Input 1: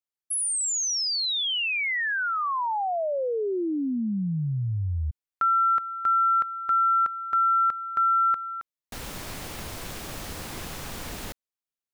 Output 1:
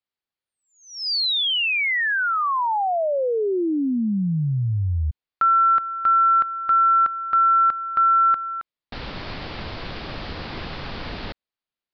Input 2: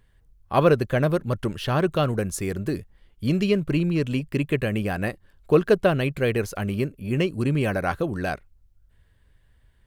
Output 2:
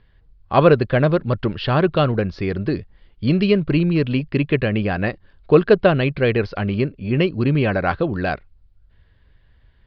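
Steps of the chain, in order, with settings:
Butterworth low-pass 4,900 Hz 72 dB per octave
level +5 dB

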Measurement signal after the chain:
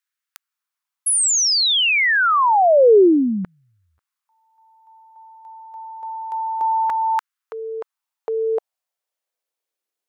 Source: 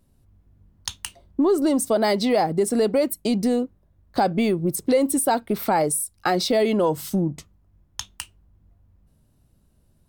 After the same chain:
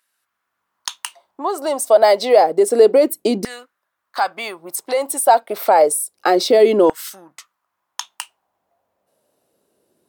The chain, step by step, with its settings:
auto-filter high-pass saw down 0.29 Hz 320–1,600 Hz
level +3.5 dB

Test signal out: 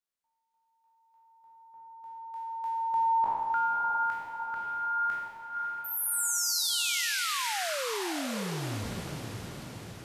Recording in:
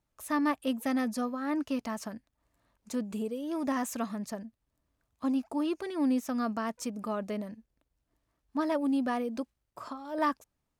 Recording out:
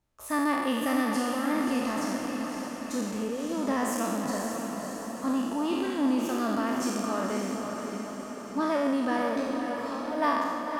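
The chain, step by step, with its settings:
peak hold with a decay on every bin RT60 1.55 s
high-shelf EQ 10,000 Hz −4 dB
on a send: feedback delay with all-pass diffusion 552 ms, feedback 60%, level −5 dB

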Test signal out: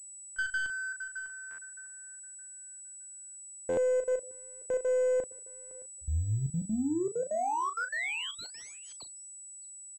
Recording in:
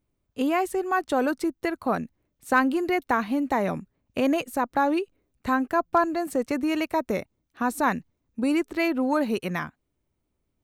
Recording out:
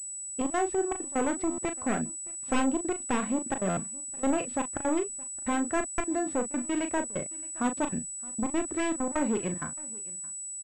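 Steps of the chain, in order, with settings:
wavefolder on the positive side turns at −24 dBFS
high-shelf EQ 3,000 Hz −10.5 dB
gate pattern "xxxx.x.x" 195 BPM −24 dB
in parallel at −5 dB: soft clipping −28 dBFS
on the sum: double-tracking delay 37 ms −8 dB
on a send: single-tap delay 619 ms −23 dB
on the sum: buffer that repeats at 0:01.50/0:03.69/0:05.90, samples 512, times 6
switching amplifier with a slow clock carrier 7,900 Hz
level −4 dB

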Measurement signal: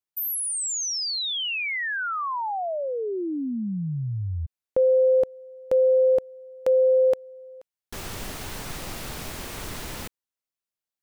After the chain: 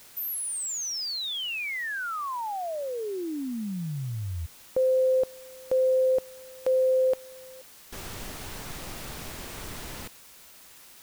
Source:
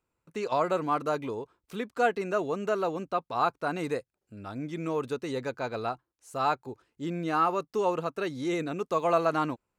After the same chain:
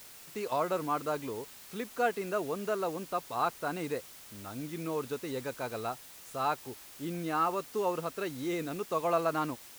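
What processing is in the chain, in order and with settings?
background noise white −47 dBFS
level −4 dB

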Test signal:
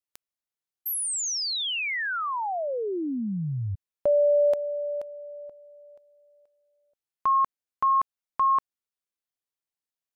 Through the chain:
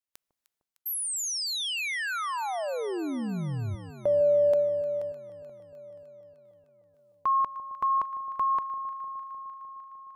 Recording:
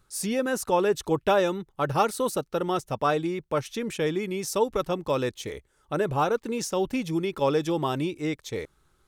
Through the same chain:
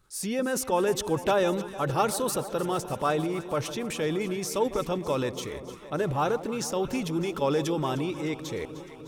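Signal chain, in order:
transient designer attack 0 dB, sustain +7 dB
delay that swaps between a low-pass and a high-pass 152 ms, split 1,000 Hz, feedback 84%, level −13 dB
level −2.5 dB

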